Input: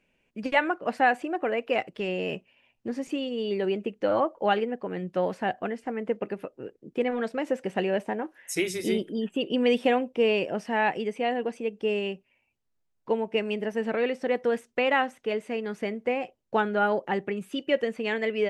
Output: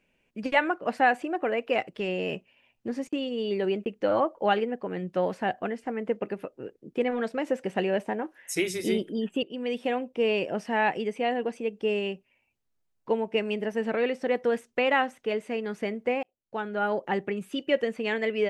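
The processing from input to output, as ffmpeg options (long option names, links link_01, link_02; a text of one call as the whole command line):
ffmpeg -i in.wav -filter_complex "[0:a]asplit=3[link_01][link_02][link_03];[link_01]afade=type=out:start_time=2.94:duration=0.02[link_04];[link_02]agate=range=-34dB:threshold=-43dB:ratio=16:release=100:detection=peak,afade=type=in:start_time=2.94:duration=0.02,afade=type=out:start_time=3.86:duration=0.02[link_05];[link_03]afade=type=in:start_time=3.86:duration=0.02[link_06];[link_04][link_05][link_06]amix=inputs=3:normalize=0,asplit=3[link_07][link_08][link_09];[link_07]atrim=end=9.43,asetpts=PTS-STARTPTS,afade=type=out:start_time=9.426:duration=0.004:curve=hsin:silence=0.223872[link_10];[link_08]atrim=start=9.43:end=16.23,asetpts=PTS-STARTPTS,afade=type=in:duration=1.14:silence=0.223872,afade=type=out:start_time=6.796:duration=0.004:curve=hsin[link_11];[link_09]atrim=start=16.23,asetpts=PTS-STARTPTS,afade=type=in:duration=0.89[link_12];[link_10][link_11][link_12]concat=n=3:v=0:a=1" out.wav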